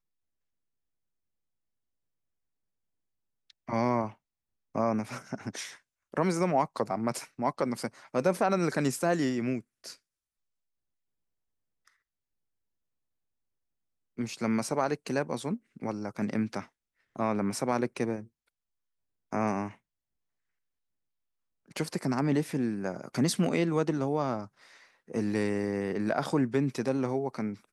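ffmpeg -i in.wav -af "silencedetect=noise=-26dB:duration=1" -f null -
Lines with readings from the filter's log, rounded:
silence_start: 0.00
silence_end: 3.70 | silence_duration: 3.70
silence_start: 9.57
silence_end: 14.20 | silence_duration: 4.63
silence_start: 18.16
silence_end: 19.33 | silence_duration: 1.17
silence_start: 19.65
silence_end: 21.77 | silence_duration: 2.12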